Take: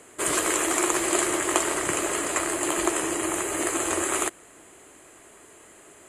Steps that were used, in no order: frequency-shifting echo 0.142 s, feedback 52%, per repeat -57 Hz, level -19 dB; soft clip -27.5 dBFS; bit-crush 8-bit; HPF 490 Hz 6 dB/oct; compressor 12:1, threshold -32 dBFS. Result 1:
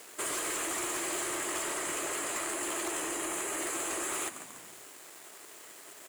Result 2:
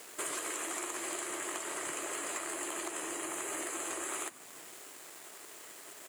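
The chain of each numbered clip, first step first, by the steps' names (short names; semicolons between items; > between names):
bit-crush > HPF > frequency-shifting echo > soft clip > compressor; bit-crush > compressor > soft clip > HPF > frequency-shifting echo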